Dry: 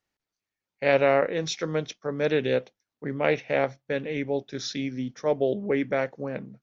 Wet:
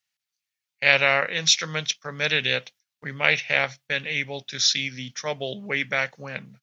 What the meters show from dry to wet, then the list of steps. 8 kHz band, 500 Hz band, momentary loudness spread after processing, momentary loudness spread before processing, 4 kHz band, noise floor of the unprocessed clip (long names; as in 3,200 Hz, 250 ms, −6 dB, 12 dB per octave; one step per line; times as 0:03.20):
can't be measured, −6.0 dB, 12 LU, 10 LU, +14.0 dB, below −85 dBFS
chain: high-pass filter 93 Hz
noise gate −49 dBFS, range −9 dB
drawn EQ curve 160 Hz 0 dB, 320 Hz −12 dB, 2,800 Hz +14 dB